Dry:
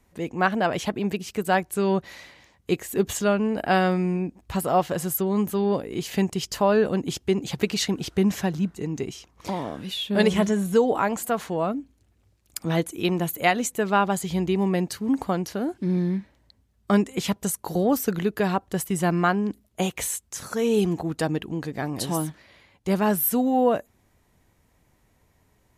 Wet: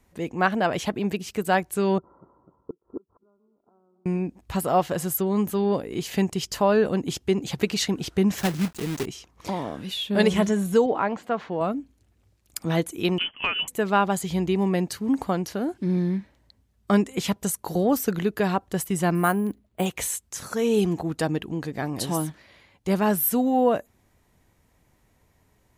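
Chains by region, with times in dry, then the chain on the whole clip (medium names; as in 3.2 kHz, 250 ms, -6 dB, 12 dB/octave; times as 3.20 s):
1.98–4.06 s: backward echo that repeats 126 ms, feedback 81%, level -13 dB + inverted gate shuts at -17 dBFS, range -38 dB + rippled Chebyshev low-pass 1.4 kHz, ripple 9 dB
8.38–9.06 s: block-companded coder 3-bit + tape noise reduction on one side only encoder only
10.86–11.61 s: block-companded coder 7-bit + high-pass 150 Hz 6 dB/octave + distance through air 230 m
13.18–13.68 s: companding laws mixed up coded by A + frequency inversion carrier 3.2 kHz + compression, threshold -20 dBFS
19.15–19.86 s: treble shelf 3.2 kHz -6.5 dB + careless resampling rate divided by 4×, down filtered, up hold
whole clip: none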